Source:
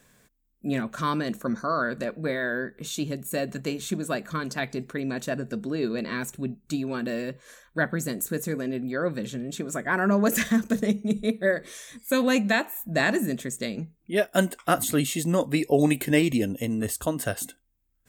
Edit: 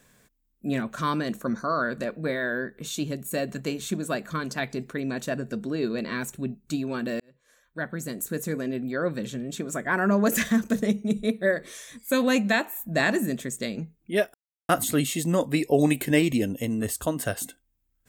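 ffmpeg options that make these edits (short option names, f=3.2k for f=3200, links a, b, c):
-filter_complex "[0:a]asplit=4[a][b][c][d];[a]atrim=end=7.2,asetpts=PTS-STARTPTS,afade=t=out:st=7.196:d=0.004:c=hsin[e];[b]atrim=start=7.2:end=14.34,asetpts=PTS-STARTPTS,afade=t=in:d=1.33,afade=t=out:st=7.136:d=0.004:c=hsin[f];[c]atrim=start=14.34:end=14.69,asetpts=PTS-STARTPTS,volume=0[g];[d]atrim=start=14.69,asetpts=PTS-STARTPTS,afade=t=in:d=0.004:c=hsin[h];[e][f][g][h]concat=n=4:v=0:a=1"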